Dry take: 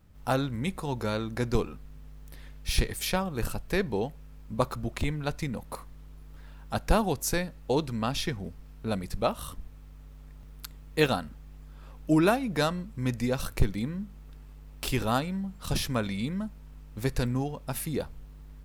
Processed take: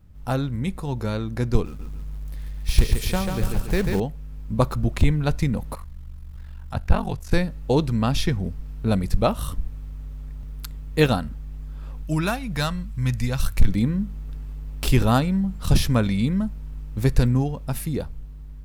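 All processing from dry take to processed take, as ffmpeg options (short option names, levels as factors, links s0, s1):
-filter_complex "[0:a]asettb=1/sr,asplit=3[s0][s1][s2];[s0]atrim=end=1.654[s3];[s1]atrim=start=1.65:end=4,asetpts=PTS-STARTPTS,afade=t=in:d=0.004:c=qsin,afade=t=out:st=2.346:d=0.004:c=qsin,acrusher=bits=3:mode=log:mix=0:aa=0.000001,aecho=1:1:141|282|423|564|705|846:0.562|0.253|0.114|0.0512|0.0231|0.0104,atrim=end_sample=103635[s4];[s2]atrim=start=3.996[s5];[s3][s4]acrossfade=d=0.004:c1=hsin:c2=qsin[s6];[s6][s5]acrossfade=d=0.004:c1=qsin:c2=hsin,asettb=1/sr,asplit=3[s7][s8][s9];[s7]atrim=end=5.744[s10];[s8]atrim=start=5.74:end=7.32,asetpts=PTS-STARTPTS,afade=t=in:d=0.004:c=qsin,afade=t=out:st=1.576:d=0.004:c=qsin,acrossover=split=3300[s11][s12];[s12]acompressor=threshold=0.00355:ratio=4:attack=1:release=60[s13];[s11][s13]amix=inputs=2:normalize=0,equalizer=f=330:w=0.78:g=-9,aeval=exprs='val(0)*sin(2*PI*23*n/s)':c=same[s14];[s9]atrim=start=7.316[s15];[s10][s14]acrossfade=d=0.004:c1=hsin:c2=qsin[s16];[s16][s15]acrossfade=d=0.004:c1=qsin:c2=hsin,asettb=1/sr,asplit=3[s17][s18][s19];[s17]atrim=end=12.034[s20];[s18]atrim=start=12.03:end=13.68,asetpts=PTS-STARTPTS,afade=t=in:d=0.004:c=qsin,afade=t=out:st=1.646:d=0.004:c=qsin,equalizer=f=360:t=o:w=2:g=-13.5,volume=11.9,asoftclip=hard,volume=0.0841[s21];[s19]atrim=start=13.676[s22];[s20][s21]acrossfade=d=0.004:c1=hsin:c2=qsin[s23];[s23][s22]acrossfade=d=0.004:c1=qsin:c2=hsin,lowshelf=f=210:g=10.5,dynaudnorm=f=220:g=11:m=2.11,volume=0.891"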